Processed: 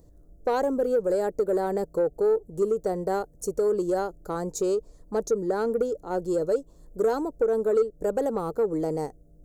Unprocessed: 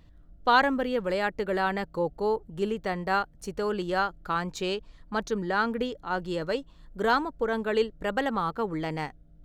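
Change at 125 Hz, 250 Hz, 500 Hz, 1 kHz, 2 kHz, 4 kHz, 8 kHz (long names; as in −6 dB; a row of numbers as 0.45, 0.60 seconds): −1.5, +1.0, +5.5, −5.0, −13.0, −13.0, +8.0 decibels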